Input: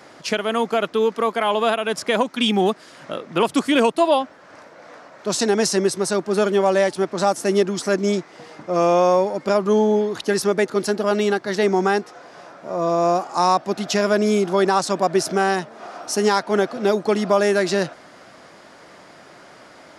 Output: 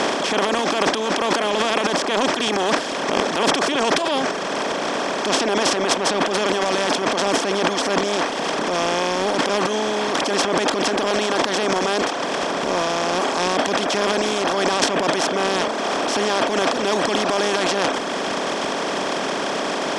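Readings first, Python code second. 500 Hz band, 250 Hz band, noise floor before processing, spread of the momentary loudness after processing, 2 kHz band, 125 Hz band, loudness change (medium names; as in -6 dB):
-2.0 dB, -1.5 dB, -46 dBFS, 4 LU, +5.0 dB, -3.5 dB, -0.5 dB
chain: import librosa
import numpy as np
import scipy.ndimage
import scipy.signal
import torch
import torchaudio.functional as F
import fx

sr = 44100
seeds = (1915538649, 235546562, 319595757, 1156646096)

y = fx.bin_compress(x, sr, power=0.2)
y = scipy.signal.sosfilt(scipy.signal.butter(2, 5000.0, 'lowpass', fs=sr, output='sos'), y)
y = fx.transient(y, sr, attack_db=-5, sustain_db=11)
y = fx.high_shelf(y, sr, hz=3400.0, db=8.5)
y = fx.dereverb_blind(y, sr, rt60_s=1.1)
y = y * librosa.db_to_amplitude(-9.0)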